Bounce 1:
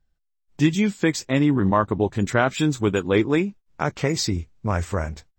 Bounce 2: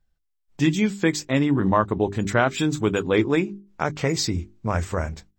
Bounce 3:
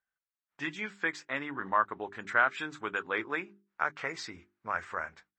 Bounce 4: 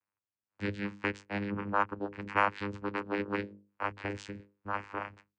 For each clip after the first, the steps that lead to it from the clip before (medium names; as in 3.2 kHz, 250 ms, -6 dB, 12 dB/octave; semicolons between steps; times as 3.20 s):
hum notches 50/100/150/200/250/300/350/400 Hz
band-pass filter 1.5 kHz, Q 2.1
vocoder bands 8, saw 101 Hz; Chebyshev shaper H 7 -41 dB, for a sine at -12 dBFS